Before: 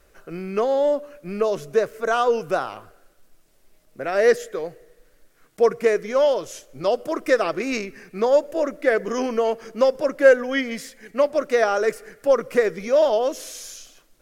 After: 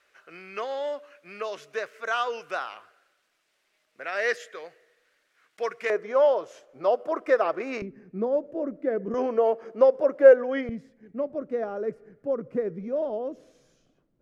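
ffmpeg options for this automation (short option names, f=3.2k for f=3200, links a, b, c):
-af "asetnsamples=n=441:p=0,asendcmd='5.9 bandpass f 840;7.82 bandpass f 190;9.14 bandpass f 570;10.69 bandpass f 150',bandpass=f=2.3k:t=q:w=0.92:csg=0"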